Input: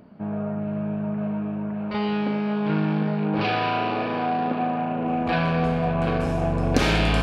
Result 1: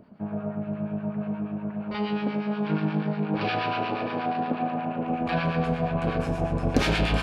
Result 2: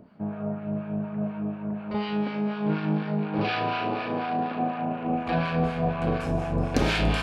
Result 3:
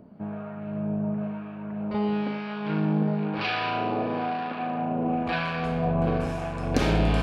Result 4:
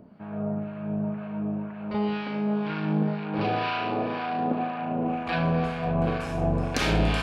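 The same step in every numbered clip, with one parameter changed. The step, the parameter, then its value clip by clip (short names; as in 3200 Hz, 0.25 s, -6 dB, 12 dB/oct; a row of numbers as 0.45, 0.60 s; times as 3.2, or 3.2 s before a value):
harmonic tremolo, rate: 8.4, 4.1, 1, 2 Hz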